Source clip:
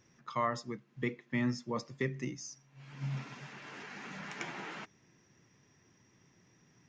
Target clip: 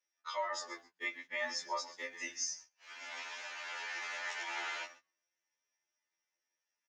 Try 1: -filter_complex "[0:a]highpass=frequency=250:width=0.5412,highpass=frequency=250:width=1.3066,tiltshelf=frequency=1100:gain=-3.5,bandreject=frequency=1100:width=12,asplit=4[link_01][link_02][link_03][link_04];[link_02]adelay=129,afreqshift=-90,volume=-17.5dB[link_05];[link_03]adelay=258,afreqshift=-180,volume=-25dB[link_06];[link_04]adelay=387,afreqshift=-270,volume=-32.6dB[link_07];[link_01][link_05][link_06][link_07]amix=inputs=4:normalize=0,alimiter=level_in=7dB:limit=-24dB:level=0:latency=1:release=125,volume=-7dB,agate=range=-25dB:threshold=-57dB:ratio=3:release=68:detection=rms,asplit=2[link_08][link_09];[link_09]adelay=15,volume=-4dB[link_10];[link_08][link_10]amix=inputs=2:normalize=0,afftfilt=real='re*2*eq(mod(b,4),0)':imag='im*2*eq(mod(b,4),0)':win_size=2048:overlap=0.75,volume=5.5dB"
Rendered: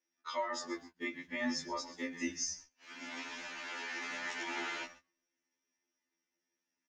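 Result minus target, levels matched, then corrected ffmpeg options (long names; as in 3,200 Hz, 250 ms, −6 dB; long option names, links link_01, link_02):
250 Hz band +16.5 dB
-filter_complex "[0:a]highpass=frequency=510:width=0.5412,highpass=frequency=510:width=1.3066,tiltshelf=frequency=1100:gain=-3.5,bandreject=frequency=1100:width=12,asplit=4[link_01][link_02][link_03][link_04];[link_02]adelay=129,afreqshift=-90,volume=-17.5dB[link_05];[link_03]adelay=258,afreqshift=-180,volume=-25dB[link_06];[link_04]adelay=387,afreqshift=-270,volume=-32.6dB[link_07];[link_01][link_05][link_06][link_07]amix=inputs=4:normalize=0,alimiter=level_in=7dB:limit=-24dB:level=0:latency=1:release=125,volume=-7dB,agate=range=-25dB:threshold=-57dB:ratio=3:release=68:detection=rms,asplit=2[link_08][link_09];[link_09]adelay=15,volume=-4dB[link_10];[link_08][link_10]amix=inputs=2:normalize=0,afftfilt=real='re*2*eq(mod(b,4),0)':imag='im*2*eq(mod(b,4),0)':win_size=2048:overlap=0.75,volume=5.5dB"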